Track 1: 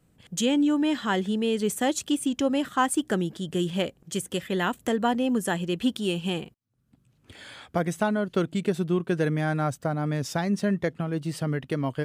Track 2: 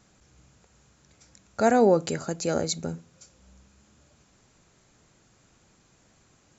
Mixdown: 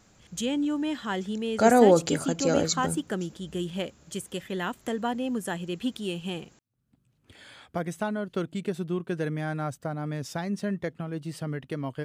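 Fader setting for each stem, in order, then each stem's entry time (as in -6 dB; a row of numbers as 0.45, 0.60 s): -5.0, +1.5 dB; 0.00, 0.00 s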